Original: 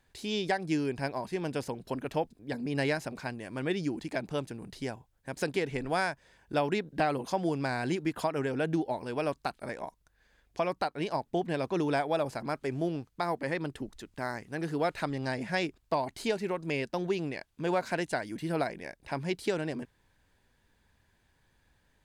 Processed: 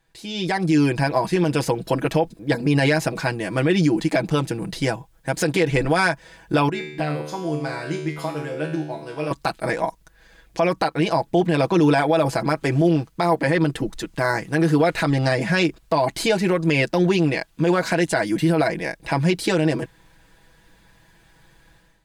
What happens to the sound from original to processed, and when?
6.69–9.31 s: feedback comb 75 Hz, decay 0.74 s, mix 90%
whole clip: comb 6.1 ms, depth 75%; peak limiter -22.5 dBFS; level rider gain up to 13.5 dB

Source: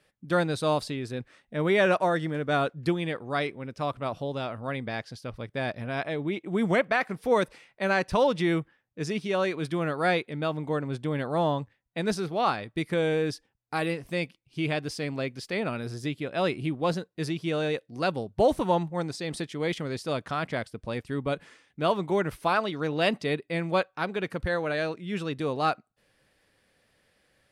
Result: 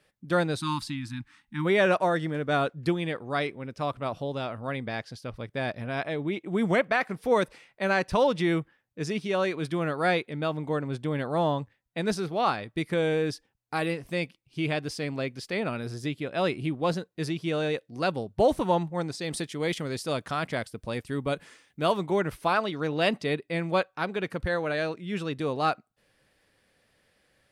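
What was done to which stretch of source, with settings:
0.60–1.66 s: spectral selection erased 340–810 Hz
19.21–22.03 s: treble shelf 6.6 kHz +9 dB

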